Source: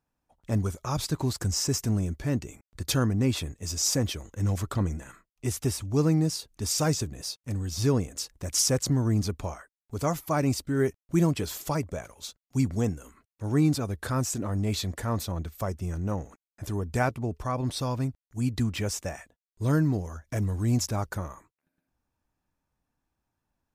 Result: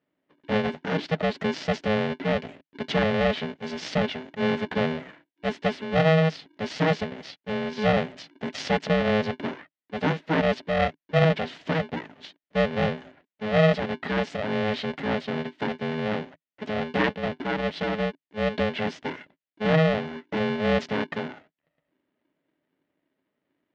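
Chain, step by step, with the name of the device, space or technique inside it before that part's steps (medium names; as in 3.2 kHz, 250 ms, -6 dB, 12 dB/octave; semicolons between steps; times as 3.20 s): ring modulator pedal into a guitar cabinet (polarity switched at an audio rate 320 Hz; cabinet simulation 100–3800 Hz, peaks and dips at 160 Hz +7 dB, 280 Hz +8 dB, 620 Hz +6 dB, 1.1 kHz -4 dB, 1.9 kHz +6 dB, 3 kHz +3 dB)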